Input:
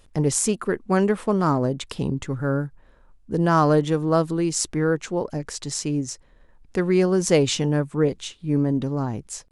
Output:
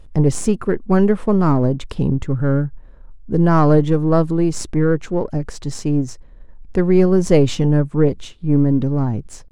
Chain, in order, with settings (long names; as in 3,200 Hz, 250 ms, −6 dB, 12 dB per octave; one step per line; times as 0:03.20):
gain on one half-wave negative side −3 dB
spectral tilt −2.5 dB per octave
level +3 dB